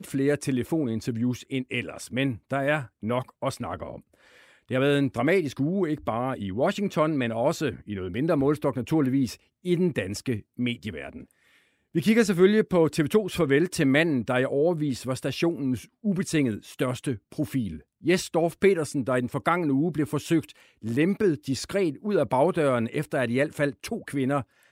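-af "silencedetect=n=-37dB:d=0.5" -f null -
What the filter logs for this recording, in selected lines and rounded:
silence_start: 3.98
silence_end: 4.70 | silence_duration: 0.72
silence_start: 11.22
silence_end: 11.95 | silence_duration: 0.73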